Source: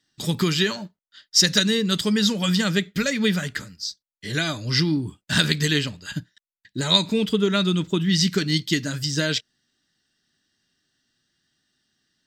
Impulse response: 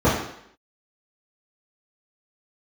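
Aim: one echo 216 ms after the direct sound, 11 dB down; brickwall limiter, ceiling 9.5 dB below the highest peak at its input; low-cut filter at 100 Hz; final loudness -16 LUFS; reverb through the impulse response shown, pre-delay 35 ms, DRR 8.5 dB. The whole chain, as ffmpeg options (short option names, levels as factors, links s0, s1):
-filter_complex "[0:a]highpass=100,alimiter=limit=0.266:level=0:latency=1,aecho=1:1:216:0.282,asplit=2[s0][s1];[1:a]atrim=start_sample=2205,adelay=35[s2];[s1][s2]afir=irnorm=-1:irlink=0,volume=0.0316[s3];[s0][s3]amix=inputs=2:normalize=0,volume=2"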